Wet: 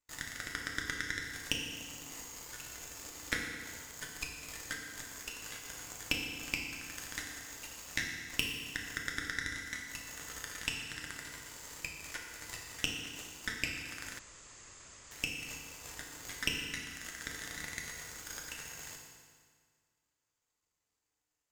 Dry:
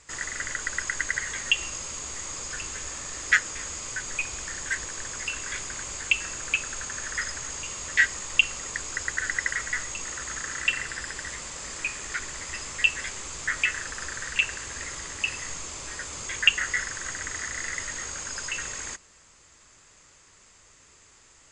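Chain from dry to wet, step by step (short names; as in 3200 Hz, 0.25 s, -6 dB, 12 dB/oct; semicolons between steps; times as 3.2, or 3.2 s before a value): 3.91–4.71 dispersion lows, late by 0.1 s, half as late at 2000 Hz; compressor 6:1, threshold -34 dBFS, peak gain reduction 20 dB; added harmonics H 4 -10 dB, 6 -20 dB, 7 -17 dB, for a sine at -16 dBFS; FDN reverb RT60 1.8 s, low-frequency decay 1.05×, high-frequency decay 0.9×, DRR -1 dB; 14.19–15.11 room tone; gain +1.5 dB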